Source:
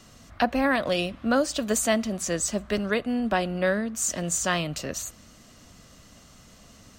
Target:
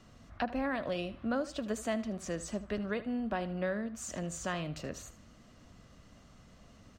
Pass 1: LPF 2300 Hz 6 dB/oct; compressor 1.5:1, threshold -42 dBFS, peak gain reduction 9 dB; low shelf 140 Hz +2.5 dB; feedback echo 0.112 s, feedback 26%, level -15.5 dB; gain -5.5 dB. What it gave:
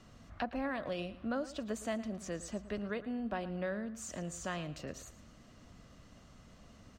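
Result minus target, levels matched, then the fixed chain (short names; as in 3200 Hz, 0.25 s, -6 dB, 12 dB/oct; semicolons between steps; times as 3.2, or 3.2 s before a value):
echo 35 ms late; compressor: peak gain reduction +3 dB
LPF 2300 Hz 6 dB/oct; compressor 1.5:1, threshold -32.5 dBFS, peak gain reduction 6 dB; low shelf 140 Hz +2.5 dB; feedback echo 77 ms, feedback 26%, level -15.5 dB; gain -5.5 dB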